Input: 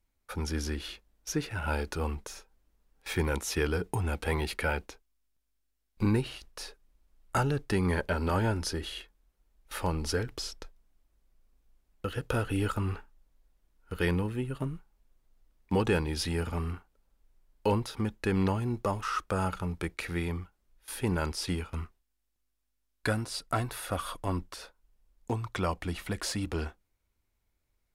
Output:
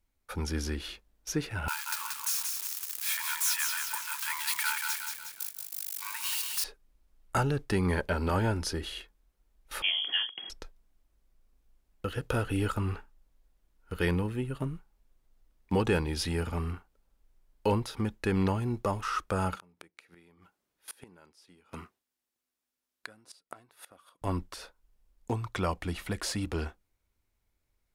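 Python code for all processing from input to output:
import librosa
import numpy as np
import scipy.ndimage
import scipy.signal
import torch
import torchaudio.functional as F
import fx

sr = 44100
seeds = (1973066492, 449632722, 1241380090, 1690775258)

y = fx.chain(x, sr, fx.crossing_spikes(level_db=-24.5),
    fx.brickwall_highpass(low_hz=860.0),
    fx.echo_crushed(ms=181, feedback_pct=55, bits=9, wet_db=-4.0), at=(1.68, 6.64))
y = fx.chain(y, sr, fx.freq_invert(carrier_hz=3300),
    fx.highpass(hz=280.0, slope=12), at=(9.82, 10.5))
y = fx.chain(y, sr, fx.highpass(hz=190.0, slope=12),
    fx.gate_flip(shuts_db=-28.0, range_db=-25), at=(19.55, 24.22))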